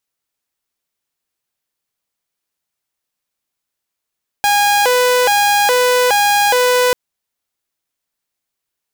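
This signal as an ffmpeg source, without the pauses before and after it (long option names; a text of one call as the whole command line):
ffmpeg -f lavfi -i "aevalsrc='0.398*(2*mod((658*t+161/1.2*(0.5-abs(mod(1.2*t,1)-0.5))),1)-1)':duration=2.49:sample_rate=44100" out.wav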